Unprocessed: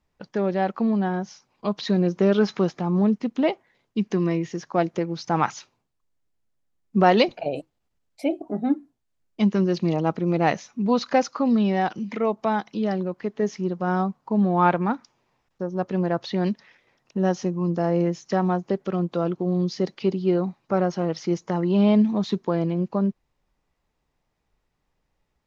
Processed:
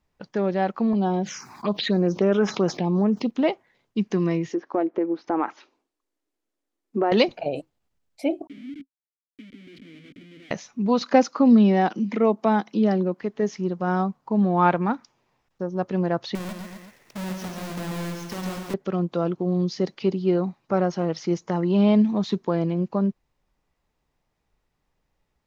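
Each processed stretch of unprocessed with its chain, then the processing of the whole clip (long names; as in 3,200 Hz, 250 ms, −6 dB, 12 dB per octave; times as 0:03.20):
0:00.93–0:03.31: high-pass filter 220 Hz 6 dB per octave + phaser swept by the level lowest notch 440 Hz, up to 4,400 Hz, full sweep at −18 dBFS + envelope flattener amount 50%
0:04.49–0:07.12: low shelf with overshoot 210 Hz −12.5 dB, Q 3 + downward compressor 3 to 1, threshold −19 dBFS + treble cut that deepens with the level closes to 1,700 Hz, closed at −24.5 dBFS
0:08.47–0:10.51: downward compressor 20 to 1, threshold −24 dBFS + comparator with hysteresis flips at −43.5 dBFS + formant filter i
0:11.01–0:13.21: high-pass filter 200 Hz 24 dB per octave + low-shelf EQ 320 Hz +10.5 dB
0:16.35–0:18.74: each half-wave held at its own peak + downward compressor 3 to 1, threshold −37 dBFS + multi-tap delay 54/139/256/376 ms −9.5/−5/−9.5/−13.5 dB
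whole clip: no processing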